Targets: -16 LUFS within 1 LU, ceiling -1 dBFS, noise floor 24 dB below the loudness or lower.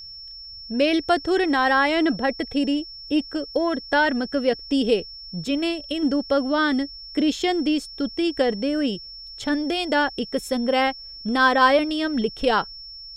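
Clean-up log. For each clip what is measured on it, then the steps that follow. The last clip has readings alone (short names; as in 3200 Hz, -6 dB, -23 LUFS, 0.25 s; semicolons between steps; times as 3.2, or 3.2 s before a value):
steady tone 5400 Hz; tone level -37 dBFS; loudness -22.5 LUFS; peak -6.0 dBFS; loudness target -16.0 LUFS
-> notch 5400 Hz, Q 30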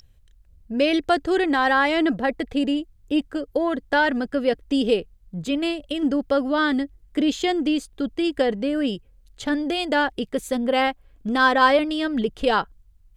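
steady tone none; loudness -22.5 LUFS; peak -6.0 dBFS; loudness target -16.0 LUFS
-> gain +6.5 dB; limiter -1 dBFS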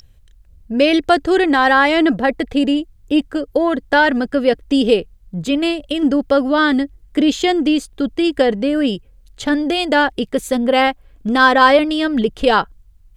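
loudness -16.0 LUFS; peak -1.0 dBFS; noise floor -48 dBFS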